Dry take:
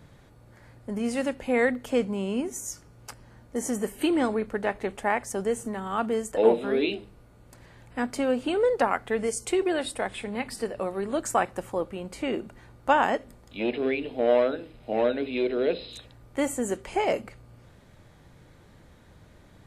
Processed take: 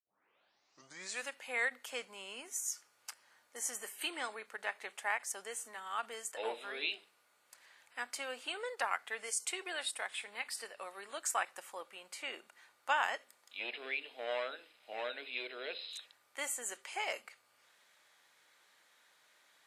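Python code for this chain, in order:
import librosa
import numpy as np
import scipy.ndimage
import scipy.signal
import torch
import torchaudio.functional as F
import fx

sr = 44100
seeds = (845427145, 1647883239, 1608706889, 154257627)

y = fx.tape_start_head(x, sr, length_s=1.3)
y = scipy.signal.sosfilt(scipy.signal.bessel(2, 1700.0, 'highpass', norm='mag', fs=sr, output='sos'), y)
y = fx.end_taper(y, sr, db_per_s=560.0)
y = y * 10.0 ** (-2.0 / 20.0)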